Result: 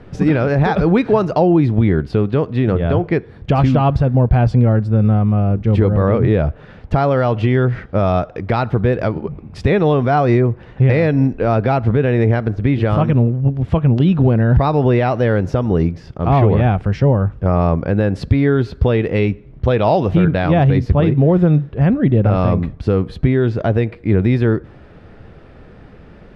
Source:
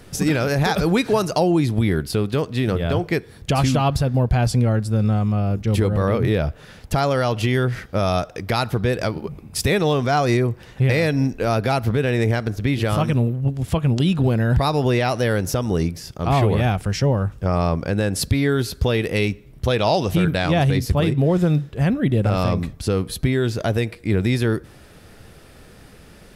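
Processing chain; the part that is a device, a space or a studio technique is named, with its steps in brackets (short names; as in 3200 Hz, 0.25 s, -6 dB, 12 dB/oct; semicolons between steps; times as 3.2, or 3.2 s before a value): phone in a pocket (LPF 3100 Hz 12 dB/oct; high shelf 2000 Hz -10 dB); gain +5.5 dB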